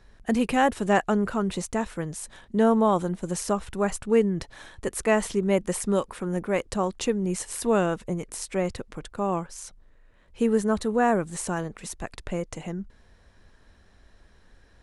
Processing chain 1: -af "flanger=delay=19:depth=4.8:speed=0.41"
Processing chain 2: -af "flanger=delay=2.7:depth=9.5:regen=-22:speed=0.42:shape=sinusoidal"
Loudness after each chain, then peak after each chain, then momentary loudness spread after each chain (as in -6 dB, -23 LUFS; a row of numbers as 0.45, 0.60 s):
-29.0, -30.0 LUFS; -10.0, -9.5 dBFS; 14, 13 LU